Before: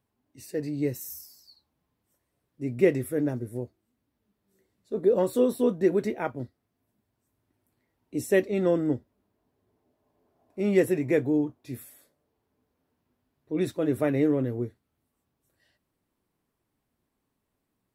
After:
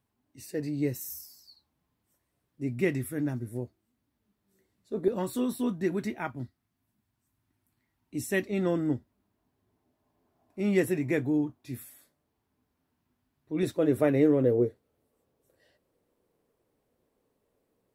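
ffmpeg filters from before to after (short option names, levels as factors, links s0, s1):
-af "asetnsamples=n=441:p=0,asendcmd='2.69 equalizer g -12.5;3.47 equalizer g -4;5.08 equalizer g -14;8.49 equalizer g -7.5;13.63 equalizer g 2.5;14.44 equalizer g 13.5',equalizer=f=490:t=o:w=0.8:g=-3.5"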